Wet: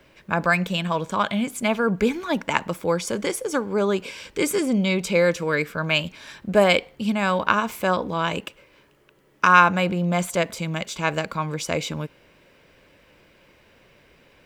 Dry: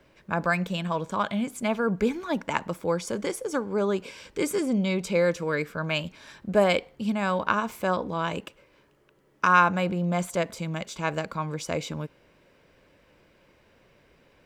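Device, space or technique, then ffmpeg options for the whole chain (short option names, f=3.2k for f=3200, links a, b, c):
presence and air boost: -af "equalizer=f=2.7k:t=o:w=1.4:g=4,highshelf=f=9.4k:g=6,volume=3.5dB"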